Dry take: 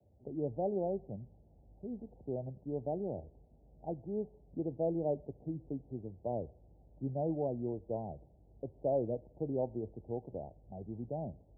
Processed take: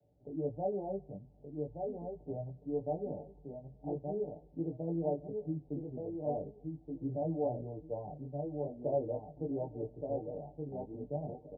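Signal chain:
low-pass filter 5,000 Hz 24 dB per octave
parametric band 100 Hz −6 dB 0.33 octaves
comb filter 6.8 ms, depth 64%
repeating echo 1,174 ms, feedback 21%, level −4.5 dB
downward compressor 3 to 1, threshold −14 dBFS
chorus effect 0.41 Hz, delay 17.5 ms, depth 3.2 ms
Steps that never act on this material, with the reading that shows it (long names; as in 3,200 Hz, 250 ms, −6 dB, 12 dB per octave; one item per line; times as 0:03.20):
low-pass filter 5,000 Hz: nothing at its input above 910 Hz
downward compressor, threshold −14 dBFS: peak of its input −18.5 dBFS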